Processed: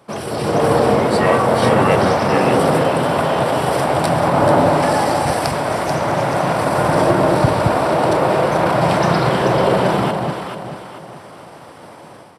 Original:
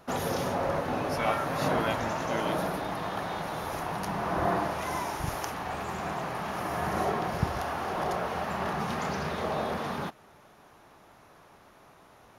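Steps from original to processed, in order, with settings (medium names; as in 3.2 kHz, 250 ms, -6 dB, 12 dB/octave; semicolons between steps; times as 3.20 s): high-pass 110 Hz 24 dB/octave; pitch shift -3 st; in parallel at -3.5 dB: hard clipper -24 dBFS, distortion -18 dB; on the sum: echo whose repeats swap between lows and highs 218 ms, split 960 Hz, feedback 59%, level -2 dB; level rider gain up to 11.5 dB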